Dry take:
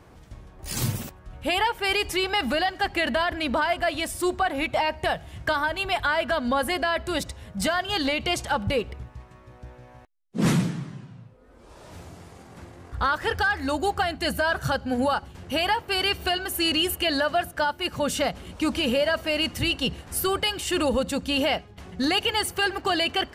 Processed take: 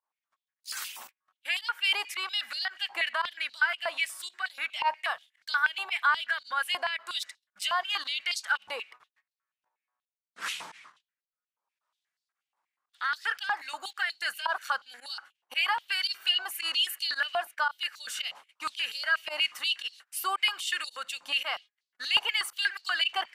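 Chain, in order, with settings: gate -36 dBFS, range -31 dB; volume shaper 112 bpm, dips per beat 1, -21 dB, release 62 ms; step-sequenced high-pass 8.3 Hz 940–4300 Hz; trim -7.5 dB

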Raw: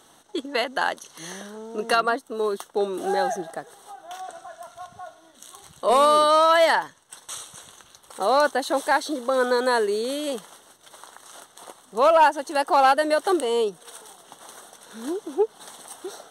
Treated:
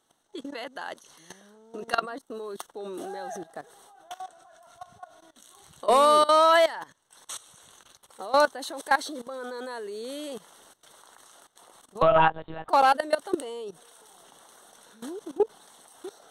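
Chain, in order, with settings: level held to a coarse grid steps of 18 dB; 12.02–12.69 s: monotone LPC vocoder at 8 kHz 160 Hz

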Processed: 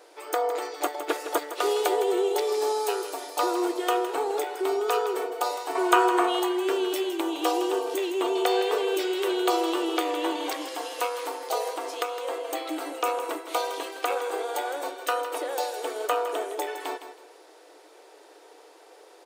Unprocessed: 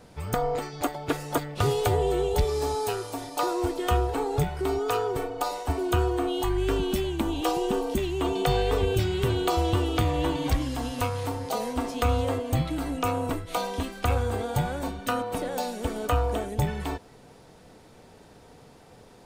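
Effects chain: 5.75–6.40 s: graphic EQ 1/2/8 kHz +11/+7/+5 dB; 11.60–12.43 s: compression, threshold -25 dBFS, peak gain reduction 6.5 dB; brick-wall FIR high-pass 300 Hz; feedback delay 161 ms, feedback 26%, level -11 dB; trim +1.5 dB

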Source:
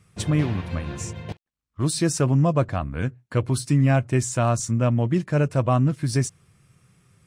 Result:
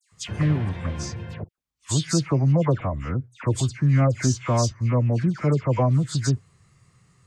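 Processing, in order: phase dispersion lows, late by 120 ms, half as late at 2.2 kHz; formant shift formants -3 st

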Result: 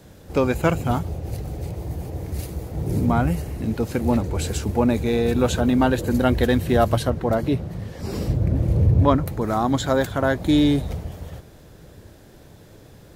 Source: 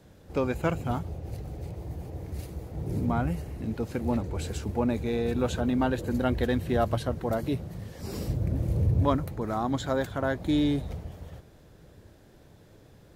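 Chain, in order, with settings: treble shelf 5.7 kHz +5.5 dB, from 7.10 s -7 dB, from 9.26 s +4.5 dB; trim +7.5 dB

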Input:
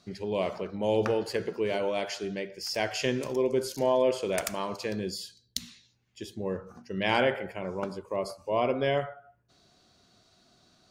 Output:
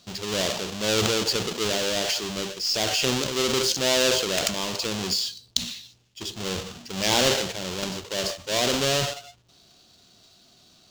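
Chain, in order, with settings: square wave that keeps the level; transient shaper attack -1 dB, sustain +8 dB; high-order bell 4.5 kHz +10.5 dB; trim -3 dB

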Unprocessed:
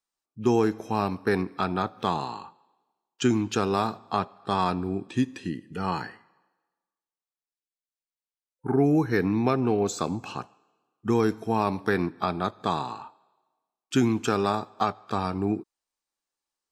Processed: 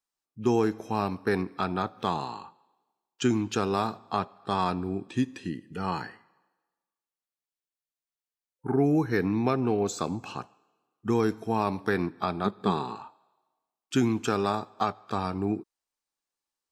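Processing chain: 12.45–12.96 s: graphic EQ with 31 bands 200 Hz +11 dB, 400 Hz +10 dB, 630 Hz -5 dB, 6.3 kHz -10 dB; trim -2 dB

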